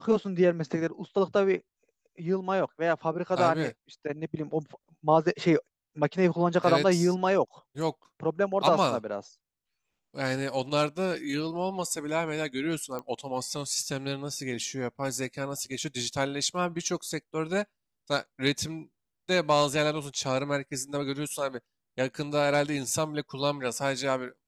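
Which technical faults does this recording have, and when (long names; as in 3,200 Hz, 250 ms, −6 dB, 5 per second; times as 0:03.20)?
0:12.99: click −22 dBFS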